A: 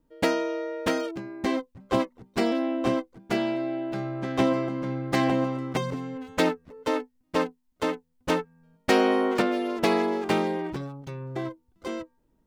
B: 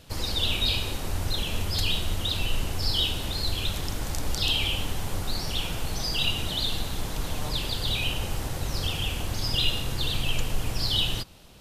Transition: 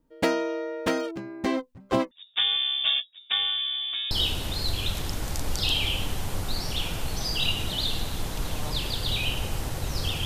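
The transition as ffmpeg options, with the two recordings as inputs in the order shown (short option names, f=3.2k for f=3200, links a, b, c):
-filter_complex "[0:a]asettb=1/sr,asplit=3[a][b][c];[a]atrim=end=2.114[d];[b]atrim=start=2.11:end=4.11,asetpts=PTS-STARTPTS,afade=t=in:d=0.004:c=qsin,afade=t=out:st=1.996:d=0.004:c=qsin,lowpass=f=3.2k:t=q:w=0.5098,lowpass=f=3.2k:t=q:w=0.6013,lowpass=f=3.2k:t=q:w=0.9,lowpass=f=3.2k:t=q:w=2.563,afreqshift=-3800[e];[c]atrim=start=4.106[f];[d][e]acrossfade=d=0.004:c1=hsin:c2=qsin[g];[g][f]acrossfade=d=0.004:c1=qsin:c2=hsin,apad=whole_dur=10.25,atrim=end=10.25,atrim=end=4.112[h];[1:a]atrim=start=2.898:end=9.04[i];[h][i]acrossfade=d=0.004:c1=hsin:c2=hsin"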